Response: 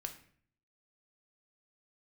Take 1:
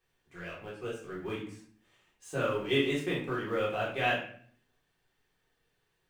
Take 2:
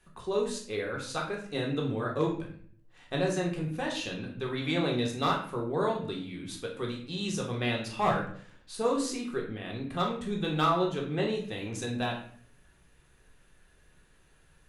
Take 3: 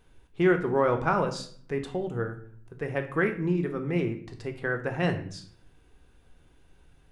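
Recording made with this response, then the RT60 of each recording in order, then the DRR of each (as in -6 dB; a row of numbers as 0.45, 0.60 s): 3; 0.55, 0.55, 0.55 s; -7.5, -1.5, 5.0 dB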